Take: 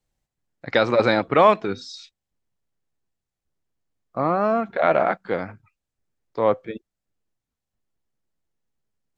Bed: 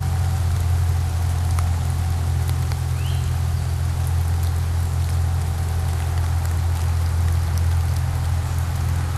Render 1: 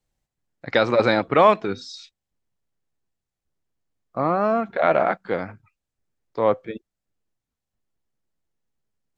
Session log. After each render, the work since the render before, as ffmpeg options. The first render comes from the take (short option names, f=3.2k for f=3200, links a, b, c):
-af anull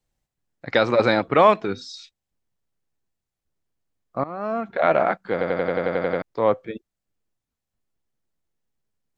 -filter_complex "[0:a]asplit=12[a][b][c][d][e][f][g][h][i][j][k][l];[a]atrim=end=4.24,asetpts=PTS-STARTPTS,afade=t=out:st=4.236:d=0.004:c=hsin:silence=0.11885[m];[b]atrim=start=4.24:end=5.412,asetpts=PTS-STARTPTS,afade=t=in:d=0.57:silence=0.11885[n];[c]atrim=start=5.318:end=5.412[o];[d]atrim=start=5.318:end=5.412[p];[e]atrim=start=5.318:end=5.412[q];[f]atrim=start=5.318:end=5.412[r];[g]atrim=start=5.318:end=5.412[s];[h]atrim=start=5.318:end=5.412[t];[i]atrim=start=5.318:end=5.412[u];[j]atrim=start=5.318:end=5.412[v];[k]atrim=start=5.318:end=5.412[w];[l]atrim=start=6.218[x];[m][n]concat=n=2:v=0:a=1[y];[y][o]acrossfade=d=0.004:c1=hsin:c2=hsin[z];[z][p]acrossfade=d=0.004:c1=hsin:c2=hsin[aa];[aa][q]acrossfade=d=0.004:c1=hsin:c2=hsin[ab];[ab][r]acrossfade=d=0.004:c1=hsin:c2=hsin[ac];[ac][s]acrossfade=d=0.004:c1=hsin:c2=hsin[ad];[ad][t]acrossfade=d=0.004:c1=hsin:c2=hsin[ae];[ae][u]acrossfade=d=0.004:c1=hsin:c2=hsin[af];[af][v]acrossfade=d=0.004:c1=hsin:c2=hsin[ag];[ag][w]acrossfade=d=0.004:c1=hsin:c2=hsin[ah];[ah][x]acrossfade=d=0.004:c1=hsin:c2=hsin"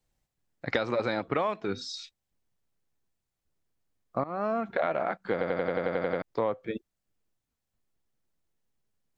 -af "acompressor=threshold=-24dB:ratio=16"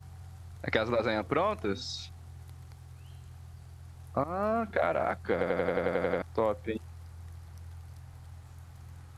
-filter_complex "[1:a]volume=-26.5dB[a];[0:a][a]amix=inputs=2:normalize=0"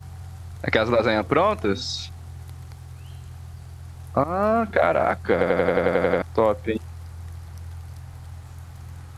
-af "volume=9dB,alimiter=limit=-1dB:level=0:latency=1"